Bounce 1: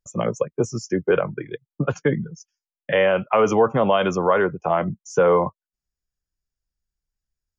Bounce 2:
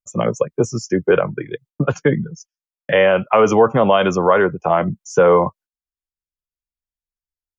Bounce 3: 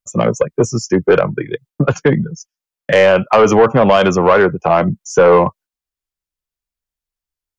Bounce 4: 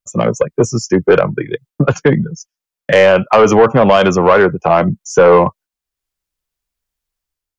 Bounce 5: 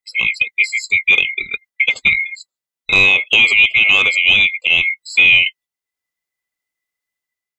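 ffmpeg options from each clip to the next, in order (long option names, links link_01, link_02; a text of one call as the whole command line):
ffmpeg -i in.wav -af "agate=range=-18dB:threshold=-46dB:ratio=16:detection=peak,volume=4.5dB" out.wav
ffmpeg -i in.wav -af "aeval=exprs='(tanh(2.51*val(0)+0.05)-tanh(0.05))/2.51':channel_layout=same,volume=5.5dB" out.wav
ffmpeg -i in.wav -af "dynaudnorm=framelen=120:gausssize=7:maxgain=7dB" out.wav
ffmpeg -i in.wav -af "afftfilt=real='real(if(lt(b,920),b+92*(1-2*mod(floor(b/92),2)),b),0)':imag='imag(if(lt(b,920),b+92*(1-2*mod(floor(b/92),2)),b),0)':win_size=2048:overlap=0.75,volume=-3dB" out.wav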